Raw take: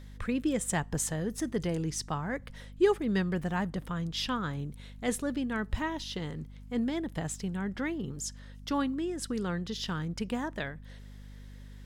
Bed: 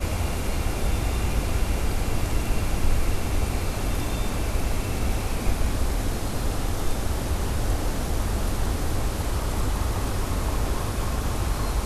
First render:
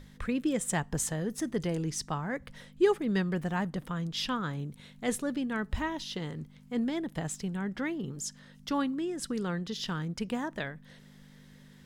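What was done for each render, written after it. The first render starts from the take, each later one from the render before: notches 50/100 Hz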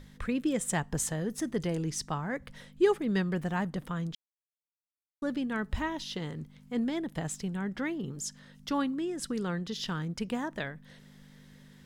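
4.15–5.22 mute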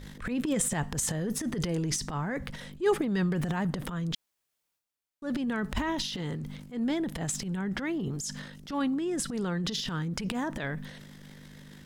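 in parallel at -2 dB: compressor, threshold -40 dBFS, peak gain reduction 19.5 dB; on the sum: transient shaper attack -11 dB, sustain +10 dB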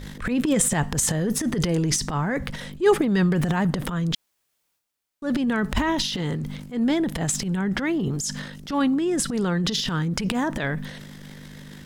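gain +7.5 dB

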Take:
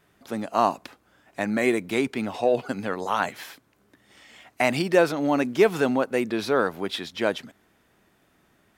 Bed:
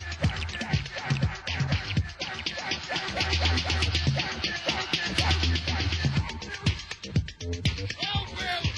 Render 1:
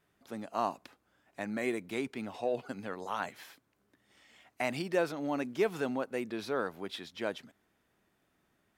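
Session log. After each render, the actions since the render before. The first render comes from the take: gain -11 dB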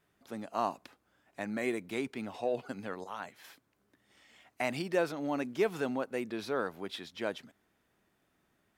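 3.04–3.44 gain -6 dB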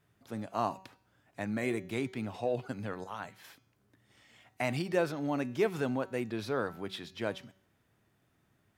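bell 110 Hz +12 dB 0.98 oct; de-hum 189.8 Hz, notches 37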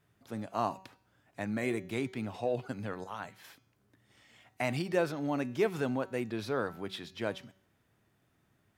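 nothing audible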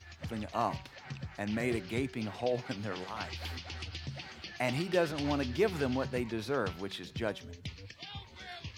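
add bed -16 dB

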